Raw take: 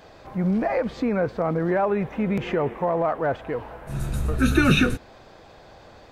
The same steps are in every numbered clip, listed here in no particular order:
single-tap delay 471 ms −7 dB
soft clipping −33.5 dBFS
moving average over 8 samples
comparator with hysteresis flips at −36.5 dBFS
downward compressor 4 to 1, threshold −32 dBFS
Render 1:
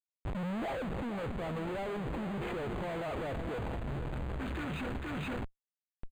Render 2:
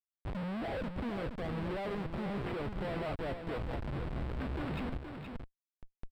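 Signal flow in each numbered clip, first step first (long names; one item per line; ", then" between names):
comparator with hysteresis, then single-tap delay, then downward compressor, then soft clipping, then moving average
downward compressor, then comparator with hysteresis, then moving average, then soft clipping, then single-tap delay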